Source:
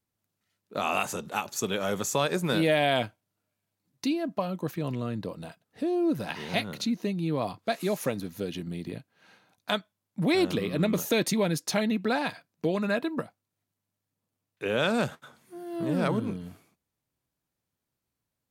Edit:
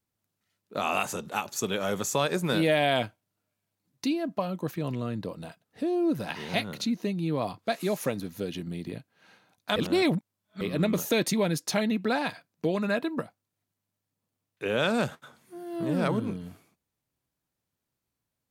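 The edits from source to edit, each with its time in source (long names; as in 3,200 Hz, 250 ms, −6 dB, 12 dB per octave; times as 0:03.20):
0:09.76–0:10.61: reverse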